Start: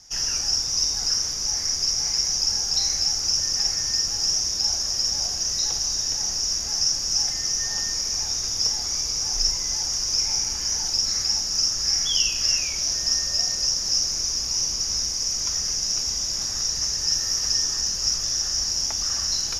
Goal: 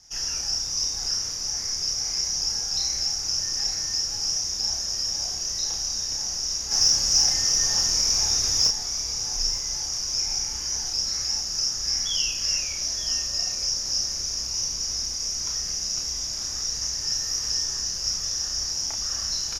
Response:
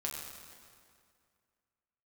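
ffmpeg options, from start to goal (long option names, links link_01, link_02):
-filter_complex "[0:a]asettb=1/sr,asplit=3[link_01][link_02][link_03];[link_01]atrim=end=6.714[link_04];[link_02]atrim=start=6.71:end=8.68,asetpts=PTS-STARTPTS,afade=type=in:duration=0.004:curve=qsin,afade=type=out:start_time=1.966:duration=0.004:curve=qsin,acontrast=77[link_05];[link_03]atrim=start=8.676[link_06];[link_04][link_05]acrossfade=duration=0.004:curve1=hsin:curve2=qsin[link_07];[link_07][link_06]acrossfade=duration=0.004:curve1=qsin:curve2=hsin,asplit=2[link_08][link_09];[link_09]adelay=31,volume=-3.5dB[link_10];[link_08][link_10]amix=inputs=2:normalize=0,asplit=2[link_11][link_12];[link_12]aecho=0:1:912:0.2[link_13];[link_11][link_13]amix=inputs=2:normalize=0,volume=-5dB"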